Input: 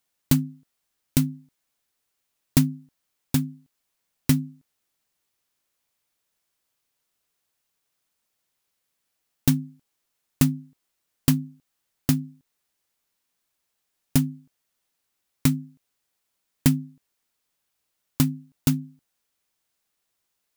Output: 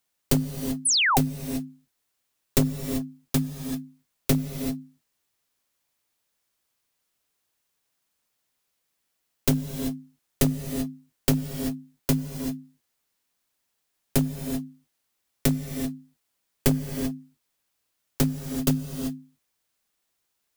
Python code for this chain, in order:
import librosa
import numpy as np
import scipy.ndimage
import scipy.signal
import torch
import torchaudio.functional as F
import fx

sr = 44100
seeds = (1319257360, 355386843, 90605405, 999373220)

y = np.minimum(x, 2.0 * 10.0 ** (-17.0 / 20.0) - x)
y = fx.rev_gated(y, sr, seeds[0], gate_ms=410, shape='rising', drr_db=6.5)
y = fx.spec_paint(y, sr, seeds[1], shape='fall', start_s=0.85, length_s=0.33, low_hz=680.0, high_hz=11000.0, level_db=-21.0)